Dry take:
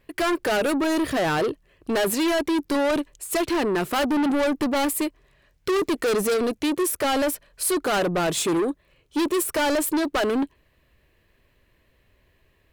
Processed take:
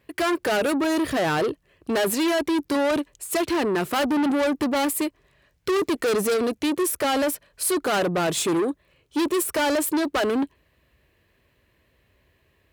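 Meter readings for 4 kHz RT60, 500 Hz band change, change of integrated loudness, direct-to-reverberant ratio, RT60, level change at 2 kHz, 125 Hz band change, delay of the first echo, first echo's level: no reverb, 0.0 dB, 0.0 dB, no reverb, no reverb, 0.0 dB, 0.0 dB, no echo, no echo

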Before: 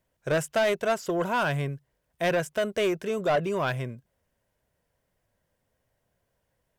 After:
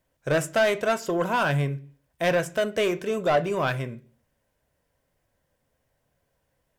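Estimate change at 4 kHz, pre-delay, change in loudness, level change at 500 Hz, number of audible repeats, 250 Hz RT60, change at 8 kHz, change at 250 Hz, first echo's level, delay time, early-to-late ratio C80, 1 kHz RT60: +2.0 dB, 3 ms, +2.5 dB, +2.0 dB, no echo, 0.55 s, +2.5 dB, +2.0 dB, no echo, no echo, 24.0 dB, 0.40 s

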